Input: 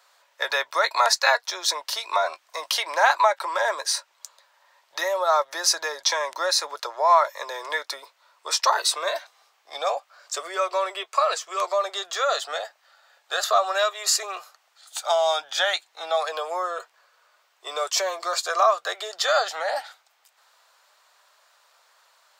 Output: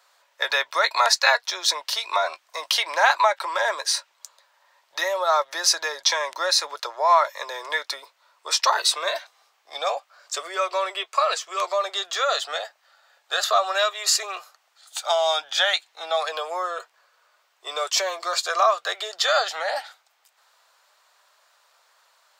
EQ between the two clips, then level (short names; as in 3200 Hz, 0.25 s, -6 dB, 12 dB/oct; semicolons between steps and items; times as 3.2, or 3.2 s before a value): dynamic EQ 3000 Hz, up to +5 dB, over -38 dBFS, Q 0.76; -1.0 dB